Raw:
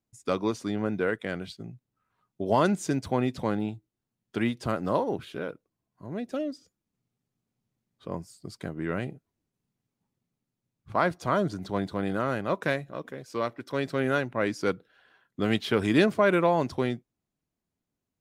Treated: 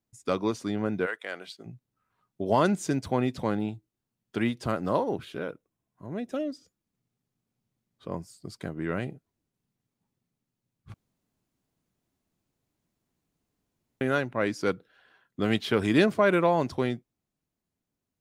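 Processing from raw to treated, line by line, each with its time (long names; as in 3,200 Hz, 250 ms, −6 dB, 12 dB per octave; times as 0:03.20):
0:01.05–0:01.65: high-pass filter 860 Hz → 340 Hz
0:05.44–0:06.47: notch filter 4,500 Hz, Q 6.3
0:10.94–0:14.01: fill with room tone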